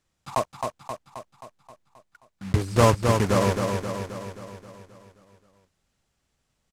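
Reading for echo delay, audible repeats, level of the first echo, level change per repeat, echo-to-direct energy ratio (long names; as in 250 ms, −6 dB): 265 ms, 7, −5.0 dB, −5.0 dB, −3.5 dB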